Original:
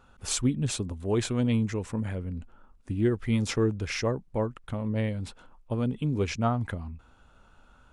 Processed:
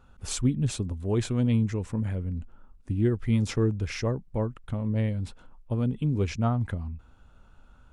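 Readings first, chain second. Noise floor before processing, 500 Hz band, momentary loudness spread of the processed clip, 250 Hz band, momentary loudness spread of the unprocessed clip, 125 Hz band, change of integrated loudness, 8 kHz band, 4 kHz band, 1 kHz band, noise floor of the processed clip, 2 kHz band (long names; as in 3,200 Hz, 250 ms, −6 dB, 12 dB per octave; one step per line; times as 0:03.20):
−59 dBFS, −1.5 dB, 10 LU, +0.5 dB, 11 LU, +3.0 dB, +1.0 dB, −3.5 dB, −3.5 dB, −3.0 dB, −56 dBFS, −3.5 dB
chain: low-shelf EQ 230 Hz +8.5 dB
level −3.5 dB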